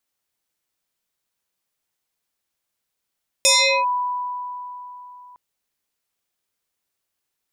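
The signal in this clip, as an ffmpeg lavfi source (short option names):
-f lavfi -i "aevalsrc='0.282*pow(10,-3*t/3.63)*sin(2*PI*989*t+5.5*clip(1-t/0.4,0,1)*sin(2*PI*1.55*989*t))':d=1.91:s=44100"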